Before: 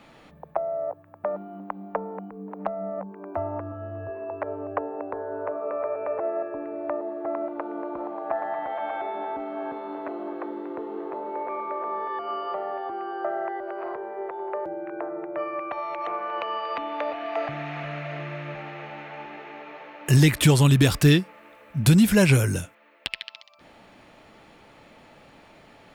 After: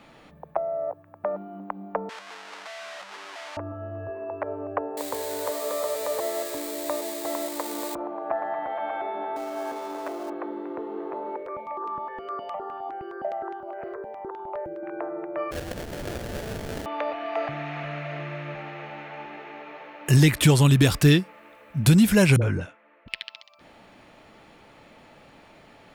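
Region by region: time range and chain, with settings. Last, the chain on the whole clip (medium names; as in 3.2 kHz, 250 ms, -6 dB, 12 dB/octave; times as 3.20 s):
2.09–3.57 s: one-bit comparator + high-pass 1 kHz + distance through air 85 m
4.97–7.95 s: zero-crossing glitches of -22.5 dBFS + rippled EQ curve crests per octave 1, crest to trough 6 dB
9.36–10.30 s: companding laws mixed up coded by mu + tone controls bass -11 dB, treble +10 dB
11.36–14.83 s: peaking EQ 5 kHz -6.5 dB 1.1 oct + stepped phaser 9.7 Hz 250–2000 Hz
15.51–16.86 s: treble shelf 2 kHz -11.5 dB + comb of notches 1 kHz + sample-rate reducer 1.1 kHz, jitter 20%
22.36–23.08 s: low-pass 2.2 kHz + phase dispersion highs, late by 58 ms, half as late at 460 Hz
whole clip: none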